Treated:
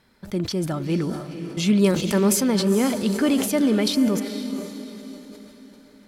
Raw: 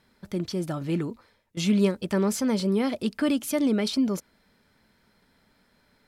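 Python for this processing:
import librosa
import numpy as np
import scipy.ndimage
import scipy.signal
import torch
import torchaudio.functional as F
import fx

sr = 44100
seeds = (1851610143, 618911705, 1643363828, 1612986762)

p1 = fx.high_shelf(x, sr, hz=7400.0, db=11.0, at=(1.84, 2.48))
p2 = p1 + fx.echo_diffused(p1, sr, ms=472, feedback_pct=43, wet_db=-9.5, dry=0)
p3 = fx.sustainer(p2, sr, db_per_s=66.0)
y = p3 * librosa.db_to_amplitude(3.5)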